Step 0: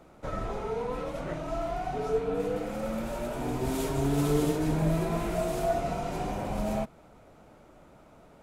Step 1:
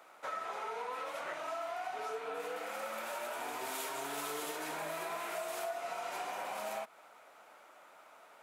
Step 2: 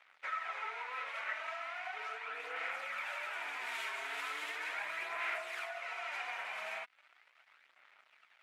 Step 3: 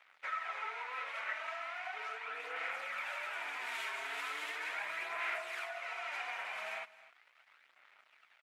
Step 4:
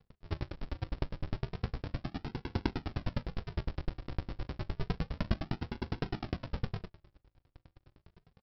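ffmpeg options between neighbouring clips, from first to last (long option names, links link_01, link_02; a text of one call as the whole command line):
ffmpeg -i in.wav -af "highpass=1100,equalizer=frequency=5700:width=0.53:gain=-5,acompressor=threshold=-43dB:ratio=5,volume=6.5dB" out.wav
ffmpeg -i in.wav -af "aeval=exprs='sgn(val(0))*max(abs(val(0))-0.00141,0)':channel_layout=same,aphaser=in_gain=1:out_gain=1:delay=4.6:decay=0.36:speed=0.38:type=sinusoidal,bandpass=frequency=2100:width_type=q:width=2.3:csg=0,volume=8.5dB" out.wav
ffmpeg -i in.wav -af "aecho=1:1:256:0.119" out.wav
ffmpeg -i in.wav -filter_complex "[0:a]aresample=11025,acrusher=samples=35:mix=1:aa=0.000001:lfo=1:lforange=35:lforate=0.3,aresample=44100,asplit=2[link_01][link_02];[link_02]adelay=39,volume=-5.5dB[link_03];[link_01][link_03]amix=inputs=2:normalize=0,aeval=exprs='val(0)*pow(10,-39*if(lt(mod(9.8*n/s,1),2*abs(9.8)/1000),1-mod(9.8*n/s,1)/(2*abs(9.8)/1000),(mod(9.8*n/s,1)-2*abs(9.8)/1000)/(1-2*abs(9.8)/1000))/20)':channel_layout=same,volume=12.5dB" out.wav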